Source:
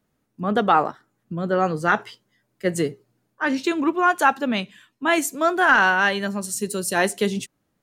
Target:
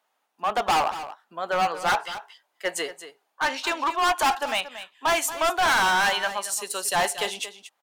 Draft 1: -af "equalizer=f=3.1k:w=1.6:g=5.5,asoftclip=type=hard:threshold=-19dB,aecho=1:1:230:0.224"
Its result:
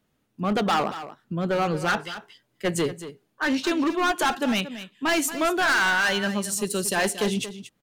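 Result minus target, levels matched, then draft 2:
1000 Hz band -3.5 dB
-af "highpass=f=820:t=q:w=2.7,equalizer=f=3.1k:w=1.6:g=5.5,asoftclip=type=hard:threshold=-19dB,aecho=1:1:230:0.224"

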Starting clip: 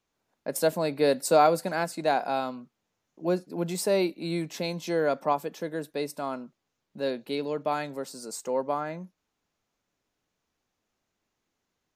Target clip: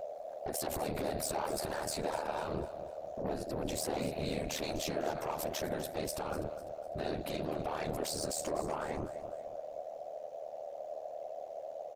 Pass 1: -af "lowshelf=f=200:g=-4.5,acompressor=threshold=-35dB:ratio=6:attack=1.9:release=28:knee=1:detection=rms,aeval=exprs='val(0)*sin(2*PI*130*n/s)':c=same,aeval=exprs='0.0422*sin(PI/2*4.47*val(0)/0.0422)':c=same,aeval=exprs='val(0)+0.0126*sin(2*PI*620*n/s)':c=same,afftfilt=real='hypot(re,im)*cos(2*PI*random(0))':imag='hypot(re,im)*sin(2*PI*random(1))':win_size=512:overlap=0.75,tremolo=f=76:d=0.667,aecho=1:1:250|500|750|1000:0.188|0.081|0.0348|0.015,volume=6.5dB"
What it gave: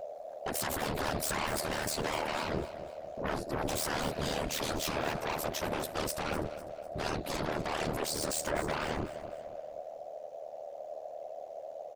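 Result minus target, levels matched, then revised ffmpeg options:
compressor: peak gain reduction -8.5 dB
-af "lowshelf=f=200:g=-4.5,acompressor=threshold=-45.5dB:ratio=6:attack=1.9:release=28:knee=1:detection=rms,aeval=exprs='val(0)*sin(2*PI*130*n/s)':c=same,aeval=exprs='0.0422*sin(PI/2*4.47*val(0)/0.0422)':c=same,aeval=exprs='val(0)+0.0126*sin(2*PI*620*n/s)':c=same,afftfilt=real='hypot(re,im)*cos(2*PI*random(0))':imag='hypot(re,im)*sin(2*PI*random(1))':win_size=512:overlap=0.75,tremolo=f=76:d=0.667,aecho=1:1:250|500|750|1000:0.188|0.081|0.0348|0.015,volume=6.5dB"

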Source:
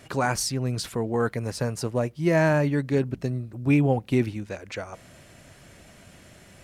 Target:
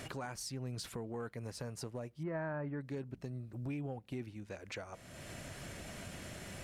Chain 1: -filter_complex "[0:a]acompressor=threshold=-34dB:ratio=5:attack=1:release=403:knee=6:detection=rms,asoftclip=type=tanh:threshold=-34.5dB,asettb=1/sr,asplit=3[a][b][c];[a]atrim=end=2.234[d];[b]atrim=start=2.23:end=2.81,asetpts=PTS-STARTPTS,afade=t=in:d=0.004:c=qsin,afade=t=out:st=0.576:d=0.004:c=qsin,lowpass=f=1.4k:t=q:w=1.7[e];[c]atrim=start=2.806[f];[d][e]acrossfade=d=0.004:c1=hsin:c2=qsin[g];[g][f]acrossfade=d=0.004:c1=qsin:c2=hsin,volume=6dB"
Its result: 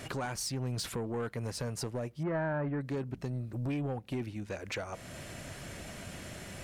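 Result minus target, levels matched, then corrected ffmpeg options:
compressor: peak gain reduction -8.5 dB
-filter_complex "[0:a]acompressor=threshold=-44.5dB:ratio=5:attack=1:release=403:knee=6:detection=rms,asoftclip=type=tanh:threshold=-34.5dB,asettb=1/sr,asplit=3[a][b][c];[a]atrim=end=2.234[d];[b]atrim=start=2.23:end=2.81,asetpts=PTS-STARTPTS,afade=t=in:d=0.004:c=qsin,afade=t=out:st=0.576:d=0.004:c=qsin,lowpass=f=1.4k:t=q:w=1.7[e];[c]atrim=start=2.806[f];[d][e]acrossfade=d=0.004:c1=hsin:c2=qsin[g];[g][f]acrossfade=d=0.004:c1=qsin:c2=hsin,volume=6dB"

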